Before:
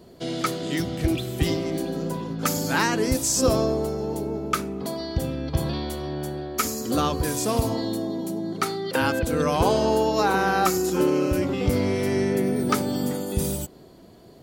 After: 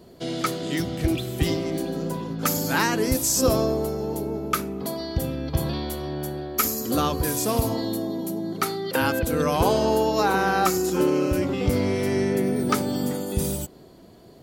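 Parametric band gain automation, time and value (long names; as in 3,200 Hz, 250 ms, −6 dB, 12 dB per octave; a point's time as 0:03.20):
parametric band 12,000 Hz 0.21 octaves
0:01.95 +3 dB
0:03.07 +11.5 dB
0:09.82 +11.5 dB
0:10.53 +1 dB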